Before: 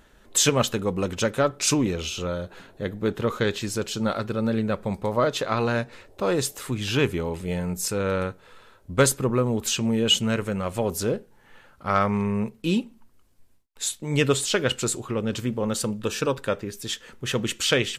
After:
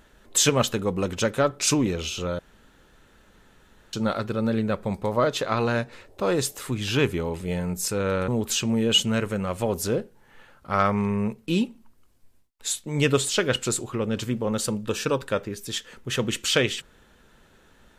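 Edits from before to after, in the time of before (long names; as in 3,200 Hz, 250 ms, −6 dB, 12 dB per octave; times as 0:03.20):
0:02.39–0:03.93: fill with room tone
0:08.28–0:09.44: remove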